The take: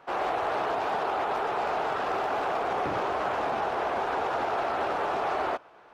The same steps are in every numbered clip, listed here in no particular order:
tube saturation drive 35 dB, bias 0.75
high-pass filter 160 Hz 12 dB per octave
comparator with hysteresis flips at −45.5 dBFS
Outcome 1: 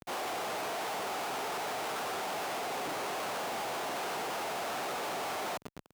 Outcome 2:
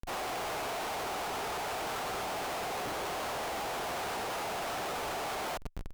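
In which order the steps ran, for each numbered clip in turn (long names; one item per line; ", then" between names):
comparator with hysteresis, then tube saturation, then high-pass filter
high-pass filter, then comparator with hysteresis, then tube saturation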